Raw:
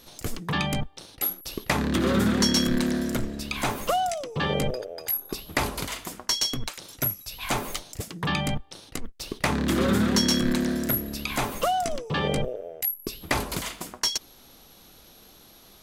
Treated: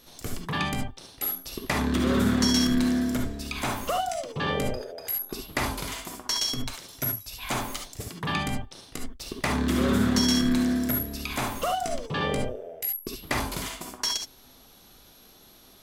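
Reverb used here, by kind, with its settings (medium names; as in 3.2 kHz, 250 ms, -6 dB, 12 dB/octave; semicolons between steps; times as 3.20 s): gated-style reverb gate 90 ms rising, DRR 2.5 dB; trim -3.5 dB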